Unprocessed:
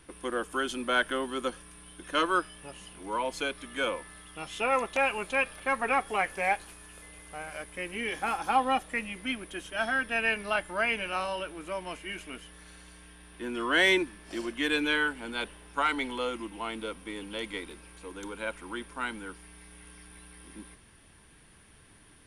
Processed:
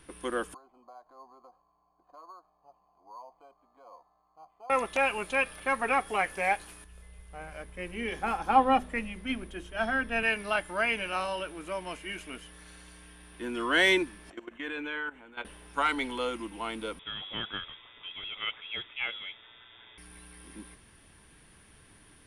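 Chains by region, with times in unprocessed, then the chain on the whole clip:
0.54–4.70 s: compression 4:1, threshold -31 dBFS + cascade formant filter a + decimation joined by straight lines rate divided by 8×
6.84–10.23 s: tilt EQ -2 dB/octave + hum notches 50/100/150/200/250/300/350/400 Hz + three bands expanded up and down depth 40%
14.30–15.45 s: level held to a coarse grid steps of 16 dB + boxcar filter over 9 samples + bass shelf 330 Hz -9.5 dB
16.99–19.98 s: high-pass 96 Hz + frequency inversion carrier 3.6 kHz
whole clip: none

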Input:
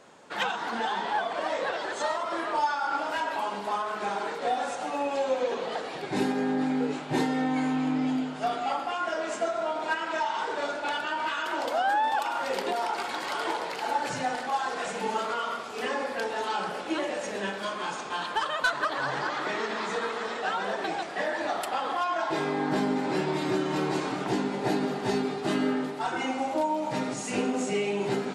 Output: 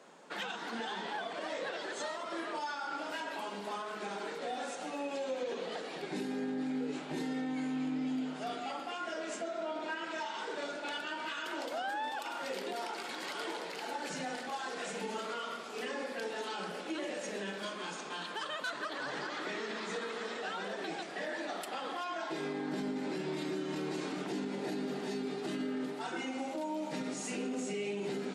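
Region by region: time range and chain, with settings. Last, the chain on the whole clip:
9.41–10.04 s: treble shelf 8.5 kHz -12 dB + comb 3.3 ms, depth 33%
whole clip: elliptic high-pass 160 Hz; dynamic bell 910 Hz, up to -8 dB, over -42 dBFS, Q 0.96; peak limiter -26 dBFS; trim -3 dB

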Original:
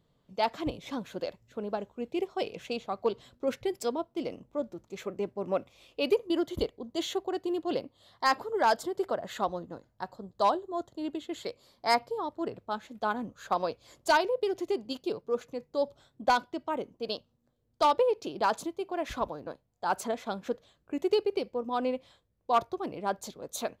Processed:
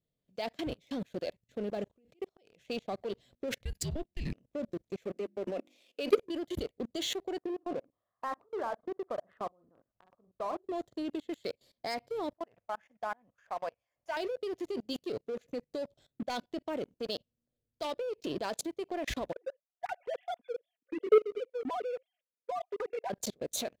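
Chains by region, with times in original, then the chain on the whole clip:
1.95–2.58 s: treble shelf 11 kHz -3.5 dB + slow attack 583 ms + compressor with a negative ratio -42 dBFS
3.65–4.33 s: high-pass 64 Hz 24 dB/octave + frequency shift -320 Hz
5.15–6.19 s: steep high-pass 190 Hz 72 dB/octave + hum notches 50/100/150/200/250/300/350 Hz
7.38–10.64 s: four-pole ladder low-pass 1.3 kHz, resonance 70% + doubling 43 ms -10 dB + tape noise reduction on one side only encoder only
12.35–14.17 s: boxcar filter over 11 samples + resonant low shelf 580 Hz -14 dB, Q 1.5
19.32–23.10 s: formants replaced by sine waves + comb 4.1 ms, depth 95%
whole clip: high-order bell 1.1 kHz -10 dB 1 oct; level held to a coarse grid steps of 21 dB; waveshaping leveller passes 2

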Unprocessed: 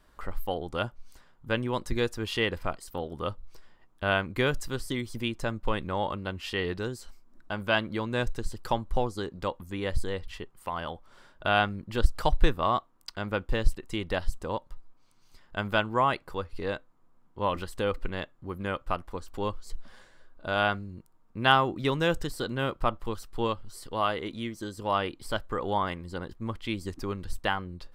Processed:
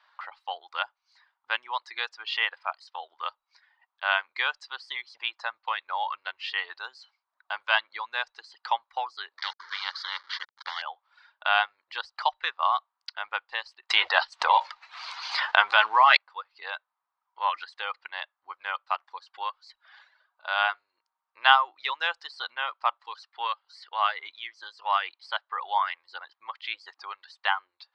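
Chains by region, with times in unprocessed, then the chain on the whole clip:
9.38–10.82 s: send-on-delta sampling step -43.5 dBFS + static phaser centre 2.6 kHz, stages 6 + spectrum-flattening compressor 10:1
13.90–16.17 s: companding laws mixed up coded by A + doubling 14 ms -9.5 dB + level flattener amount 100%
whole clip: elliptic band-pass 830–4500 Hz, stop band 60 dB; reverb removal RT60 0.92 s; trim +5 dB

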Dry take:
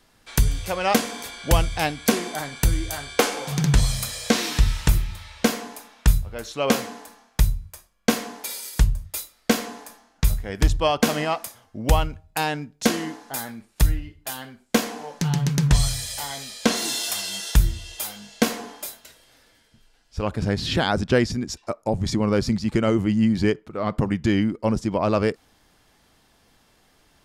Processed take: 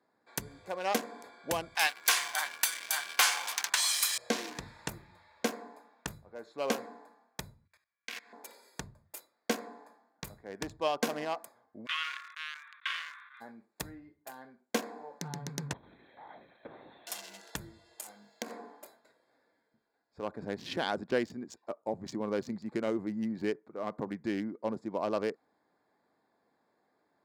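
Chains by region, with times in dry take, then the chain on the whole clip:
1.75–4.18 s: high-pass 980 Hz 24 dB/octave + waveshaping leveller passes 3
7.65–8.33 s: FFT filter 100 Hz 0 dB, 230 Hz -15 dB, 560 Hz -12 dB, 1 kHz -6 dB, 2.3 kHz +13 dB, 9.1 kHz 0 dB + level held to a coarse grid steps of 14 dB
11.85–13.40 s: formants flattened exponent 0.3 + Chebyshev band-pass 1.1–3.6 kHz, order 5 + decay stretcher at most 40 dB/s
15.73–17.07 s: compression 3:1, threshold -32 dBFS + LPC vocoder at 8 kHz whisper
17.99–18.52 s: treble shelf 4 kHz +7 dB + compression, threshold -22 dBFS + decimation joined by straight lines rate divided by 2×
whole clip: local Wiener filter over 15 samples; high-pass 280 Hz 12 dB/octave; band-stop 1.3 kHz, Q 12; trim -9 dB

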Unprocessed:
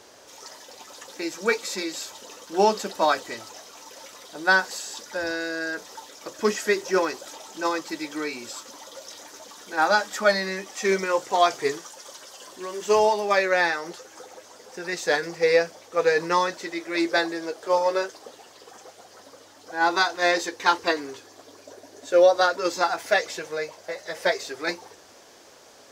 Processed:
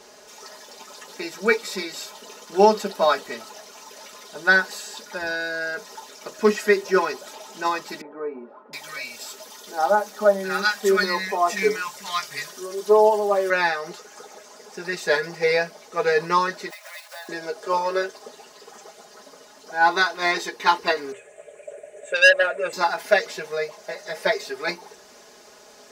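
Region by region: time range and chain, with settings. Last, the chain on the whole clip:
8.01–13.50 s: treble shelf 8.3 kHz +8 dB + three bands offset in time mids, lows, highs 690/720 ms, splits 180/1200 Hz
16.70–17.29 s: block-companded coder 3-bit + compression 10:1, threshold -35 dBFS + brick-wall FIR high-pass 500 Hz
21.12–22.73 s: FFT filter 160 Hz 0 dB, 260 Hz -19 dB, 570 Hz +9 dB, 960 Hz -13 dB, 2.4 kHz +5 dB, 5 kHz -29 dB, 8.2 kHz +6 dB, 12 kHz -16 dB + transformer saturation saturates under 2.6 kHz
whole clip: band-stop 3.3 kHz, Q 26; dynamic bell 6.8 kHz, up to -6 dB, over -49 dBFS, Q 1.9; comb 4.8 ms, depth 82%

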